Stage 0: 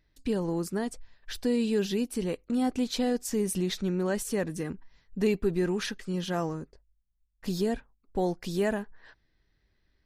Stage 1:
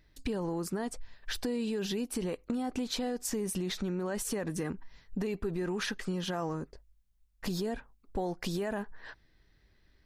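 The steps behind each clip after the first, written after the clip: peak limiter -24 dBFS, peak gain reduction 9.5 dB; compression 4:1, threshold -38 dBFS, peak gain reduction 9.5 dB; dynamic bell 1 kHz, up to +5 dB, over -56 dBFS, Q 0.79; trim +5.5 dB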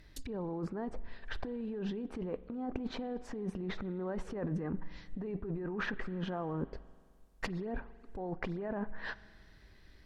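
low-pass that closes with the level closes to 1.3 kHz, closed at -33.5 dBFS; compressor with a negative ratio -39 dBFS, ratio -1; spring tank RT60 2 s, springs 43 ms, chirp 20 ms, DRR 17.5 dB; trim +2 dB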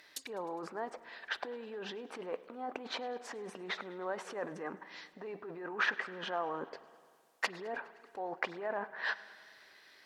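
high-pass 670 Hz 12 dB/octave; modulated delay 103 ms, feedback 69%, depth 83 cents, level -22 dB; trim +7 dB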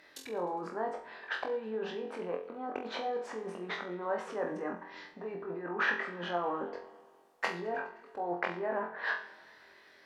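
treble shelf 2.2 kHz -11 dB; on a send: flutter echo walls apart 3.9 m, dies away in 0.36 s; on the sum: trim +3.5 dB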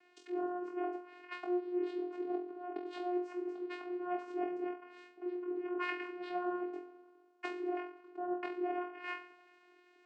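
vocoder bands 8, saw 357 Hz; trim -1.5 dB

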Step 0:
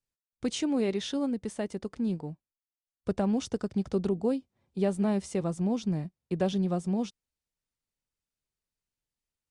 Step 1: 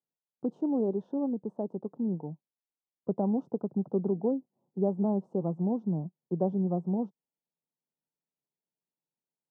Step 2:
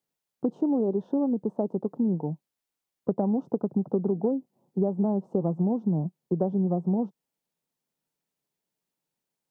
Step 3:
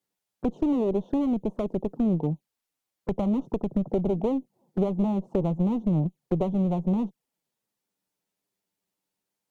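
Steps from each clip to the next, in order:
elliptic band-pass 150–910 Hz, stop band 40 dB
compression, threshold -30 dBFS, peak gain reduction 8.5 dB; trim +8.5 dB
one-sided clip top -29.5 dBFS; touch-sensitive flanger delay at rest 10.2 ms, full sweep at -29.5 dBFS; trim +4.5 dB

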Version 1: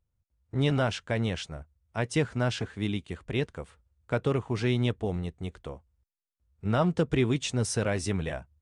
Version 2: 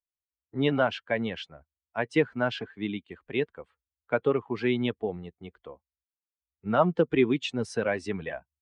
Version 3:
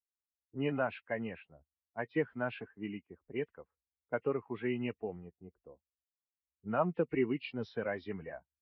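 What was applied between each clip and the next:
expander on every frequency bin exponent 1.5; three-band isolator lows -20 dB, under 200 Hz, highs -21 dB, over 3.6 kHz; trim +6.5 dB
knee-point frequency compression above 1.8 kHz 1.5:1; level-controlled noise filter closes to 330 Hz, open at -23.5 dBFS; trim -8.5 dB

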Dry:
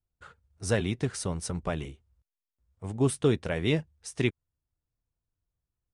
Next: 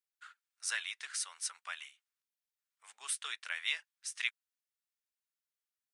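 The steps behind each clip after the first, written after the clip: high-pass 1.4 kHz 24 dB/octave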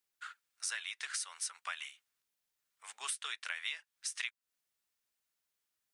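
compression 6:1, threshold -43 dBFS, peak gain reduction 14.5 dB; trim +7 dB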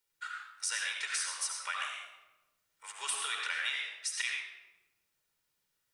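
reverberation RT60 1.2 s, pre-delay 67 ms, DRR -0.5 dB; trim +1.5 dB

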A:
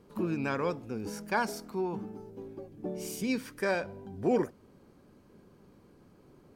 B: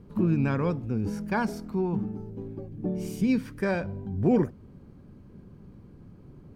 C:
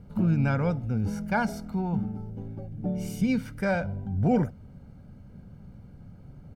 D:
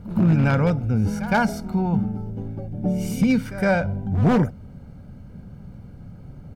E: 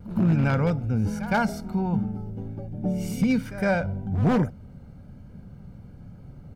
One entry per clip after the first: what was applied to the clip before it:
tone controls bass +15 dB, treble -6 dB
comb 1.4 ms, depth 63%
wavefolder -17.5 dBFS; pre-echo 113 ms -15 dB; trim +6.5 dB
vibrato 1.2 Hz 26 cents; trim -3.5 dB

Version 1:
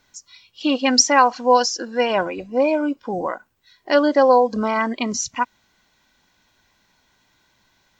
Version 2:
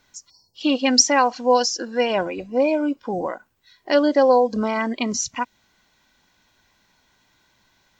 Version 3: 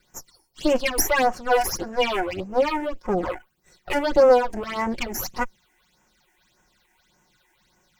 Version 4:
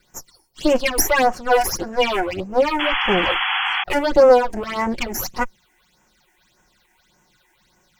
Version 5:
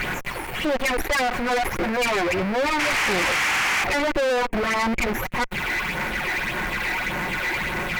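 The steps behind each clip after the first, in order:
spectral selection erased 0.30–0.55 s, 1–4.3 kHz; dynamic bell 1.2 kHz, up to -6 dB, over -31 dBFS, Q 1.3
comb filter that takes the minimum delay 5.5 ms; in parallel at +0.5 dB: peak limiter -12.5 dBFS, peak gain reduction 9 dB; on the sum: phase shifter stages 8, 1.7 Hz, lowest notch 150–4100 Hz; trim -3.5 dB
painted sound noise, 2.79–3.84 s, 730–3400 Hz -25 dBFS; trim +3.5 dB
jump at every zero crossing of -17.5 dBFS; resonant high shelf 3.3 kHz -13.5 dB, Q 3; valve stage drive 20 dB, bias 0.45

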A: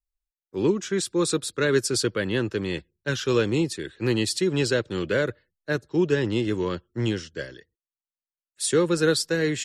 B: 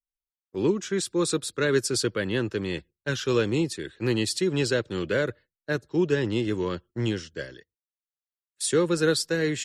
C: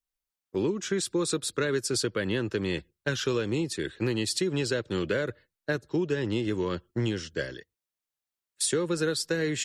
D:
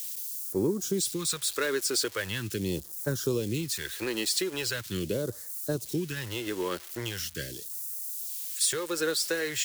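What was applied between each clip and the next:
gate -46 dBFS, range -12 dB; trim -1.5 dB
compression, threshold -29 dBFS, peak gain reduction 11.5 dB; trim +4.5 dB
zero-crossing glitches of -29.5 dBFS; phase shifter stages 2, 0.41 Hz, lowest notch 110–2700 Hz

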